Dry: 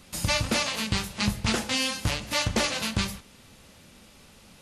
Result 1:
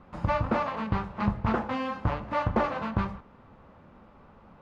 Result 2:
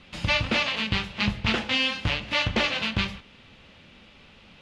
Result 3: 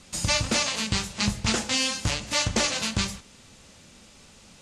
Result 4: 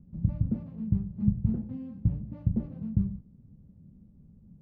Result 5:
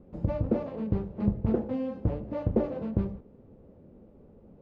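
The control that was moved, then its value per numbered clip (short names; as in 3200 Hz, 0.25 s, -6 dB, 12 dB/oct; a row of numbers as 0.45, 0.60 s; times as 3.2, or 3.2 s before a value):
synth low-pass, frequency: 1100, 3000, 7500, 170, 450 Hz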